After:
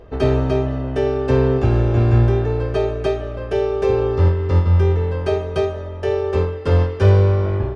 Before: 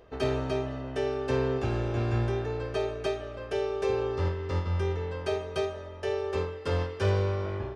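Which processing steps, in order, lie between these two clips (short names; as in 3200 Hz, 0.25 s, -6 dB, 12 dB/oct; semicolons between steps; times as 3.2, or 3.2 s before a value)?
tilt -2 dB/oct; gain +8 dB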